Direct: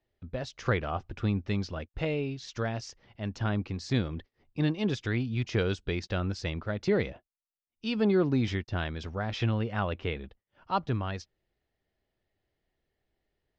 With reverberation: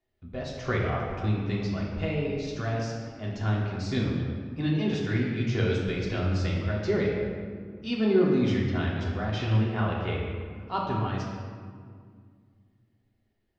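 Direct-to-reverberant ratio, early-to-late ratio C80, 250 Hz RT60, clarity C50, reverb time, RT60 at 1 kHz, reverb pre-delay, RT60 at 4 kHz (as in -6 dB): -4.5 dB, 2.5 dB, 2.9 s, 1.0 dB, 2.0 s, 1.9 s, 3 ms, 1.1 s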